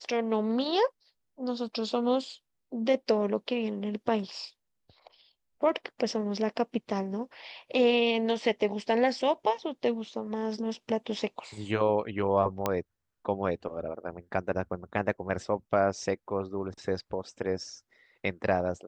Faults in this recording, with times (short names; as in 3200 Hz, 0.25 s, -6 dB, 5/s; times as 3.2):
12.66 pop -12 dBFS